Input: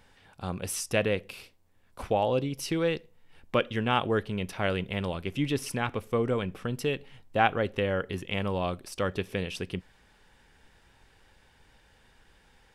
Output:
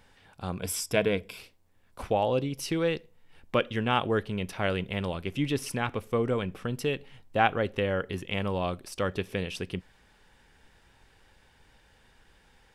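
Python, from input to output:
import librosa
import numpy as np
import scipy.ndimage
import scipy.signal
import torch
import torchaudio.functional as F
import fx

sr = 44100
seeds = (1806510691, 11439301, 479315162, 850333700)

y = fx.ripple_eq(x, sr, per_octave=1.7, db=9, at=(0.59, 1.38))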